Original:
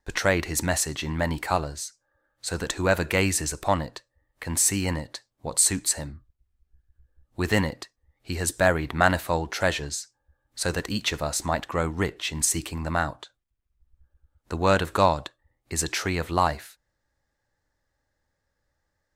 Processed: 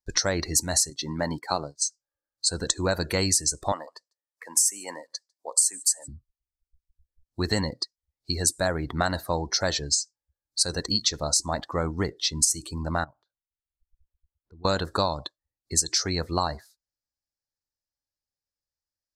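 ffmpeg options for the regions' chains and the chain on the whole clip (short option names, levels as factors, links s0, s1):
-filter_complex "[0:a]asettb=1/sr,asplit=3[s0][s1][s2];[s0]atrim=end=0.904[s3];[s1]atrim=start=0.9:end=1.82,asetpts=PTS-STARTPTS,afade=t=in:d=0.004:c=qsin,afade=t=out:st=0.916:d=0.004:c=qsin,agate=range=0.0224:threshold=0.0316:ratio=3:release=100:detection=peak,highpass=140[s4];[s2]atrim=start=1.816[s5];[s3][s4]acrossfade=d=0.004:c1=hsin:c2=qsin[s6];[s6][s5]acrossfade=d=0.004:c1=qsin:c2=hsin,asettb=1/sr,asplit=3[s7][s8][s9];[s7]atrim=end=3.724[s10];[s8]atrim=start=3.72:end=6.08,asetpts=PTS-STARTPTS,afade=t=in:d=0.004:c=qsin,afade=t=out:st=2.356:d=0.004:c=qsin,highpass=520,equalizer=f=4100:t=o:w=0.4:g=-9,aecho=1:1:149:0.0841,atrim=end_sample=104076[s11];[s9]atrim=start=6.076[s12];[s10][s11]acrossfade=d=0.004:c1=hsin:c2=qsin[s13];[s13][s12]acrossfade=d=0.004:c1=qsin:c2=hsin,asettb=1/sr,asplit=3[s14][s15][s16];[s14]atrim=end=13.044[s17];[s15]atrim=start=13.04:end=14.65,asetpts=PTS-STARTPTS,afade=t=in:d=0.004:c=qsin,afade=t=out:st=1.606:d=0.004:c=qsin,lowpass=2000,acompressor=threshold=0.00501:ratio=4:attack=3.2:release=140:knee=1:detection=peak[s18];[s16]atrim=start=14.646[s19];[s17][s18]acrossfade=d=0.004:c1=hsin:c2=qsin[s20];[s20][s19]acrossfade=d=0.004:c1=qsin:c2=hsin,afftdn=nr=23:nf=-36,highshelf=f=3600:t=q:w=3:g=10,acompressor=threshold=0.1:ratio=6"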